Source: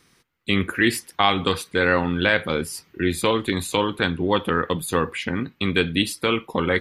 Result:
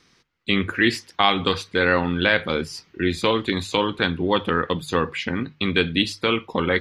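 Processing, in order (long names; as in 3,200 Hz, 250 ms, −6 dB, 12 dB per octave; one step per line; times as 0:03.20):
high shelf with overshoot 7,700 Hz −12.5 dB, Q 1.5
mains-hum notches 50/100/150 Hz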